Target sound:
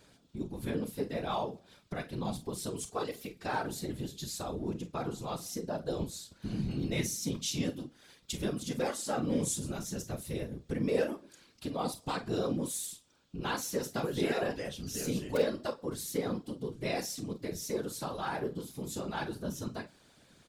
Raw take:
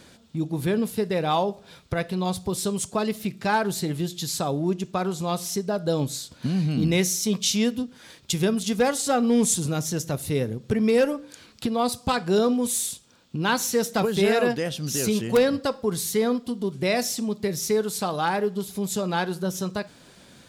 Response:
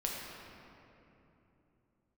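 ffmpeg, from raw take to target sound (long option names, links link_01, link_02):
-filter_complex "[0:a]asettb=1/sr,asplit=3[link_01][link_02][link_03];[link_01]atrim=end=2.834[link_04];[link_02]atrim=start=2.83:end=3.46,asetpts=PTS-STARTPTS,afade=type=in:duration=0.004:curve=qsin,afade=type=out:start_time=0.626:duration=0.004:curve=qsin,aecho=1:1:2.6:0.64,atrim=end_sample=27783[link_05];[link_03]atrim=start=3.456[link_06];[link_04][link_05]acrossfade=duration=0.004:curve1=hsin:curve2=qsin[link_07];[link_07][link_06]acrossfade=duration=0.004:curve1=qsin:curve2=hsin,aecho=1:1:33|48:0.266|0.211,afftfilt=real='hypot(re,im)*cos(2*PI*random(0))':imag='hypot(re,im)*sin(2*PI*random(1))':win_size=512:overlap=0.75,volume=-5.5dB"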